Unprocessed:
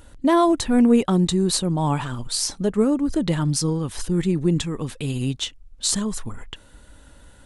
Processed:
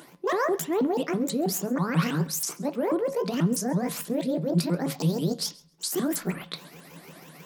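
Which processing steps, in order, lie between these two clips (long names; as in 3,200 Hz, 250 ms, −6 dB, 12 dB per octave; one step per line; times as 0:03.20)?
pitch shifter swept by a sawtooth +12 semitones, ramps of 162 ms
elliptic high-pass filter 170 Hz
reversed playback
downward compressor 5 to 1, threshold −31 dBFS, peak gain reduction 16 dB
reversed playback
brickwall limiter −25.5 dBFS, peak gain reduction 8.5 dB
feedback echo with a high-pass in the loop 134 ms, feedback 16%, level −23.5 dB
on a send at −9 dB: convolution reverb RT60 0.35 s, pre-delay 3 ms
on the sum: level +6.5 dB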